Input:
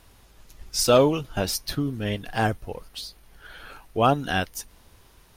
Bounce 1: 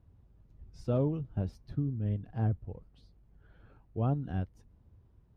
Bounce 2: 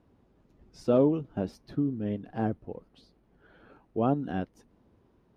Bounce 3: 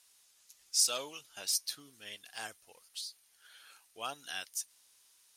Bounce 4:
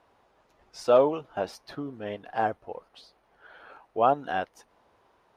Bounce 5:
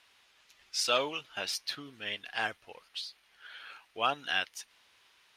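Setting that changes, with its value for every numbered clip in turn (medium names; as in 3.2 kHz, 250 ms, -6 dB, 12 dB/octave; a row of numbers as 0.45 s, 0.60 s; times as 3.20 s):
band-pass filter, frequency: 100 Hz, 250 Hz, 7.9 kHz, 730 Hz, 2.7 kHz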